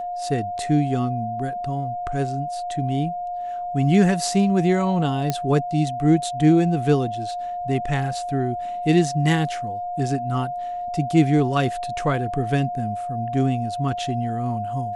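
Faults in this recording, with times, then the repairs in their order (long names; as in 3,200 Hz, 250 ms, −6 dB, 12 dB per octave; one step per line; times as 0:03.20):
whistle 710 Hz −26 dBFS
0:05.30: click −8 dBFS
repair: click removal
notch filter 710 Hz, Q 30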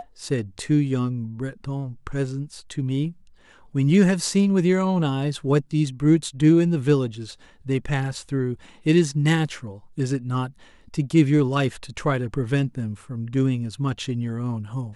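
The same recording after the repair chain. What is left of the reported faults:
none of them is left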